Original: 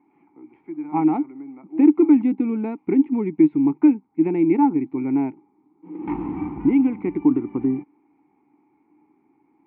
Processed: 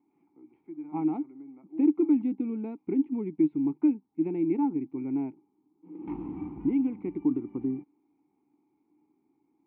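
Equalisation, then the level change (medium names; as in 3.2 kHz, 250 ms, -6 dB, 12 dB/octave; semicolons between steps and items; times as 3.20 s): peaking EQ 890 Hz -4 dB 0.92 oct; peaking EQ 1.8 kHz -9 dB 0.92 oct; -8.5 dB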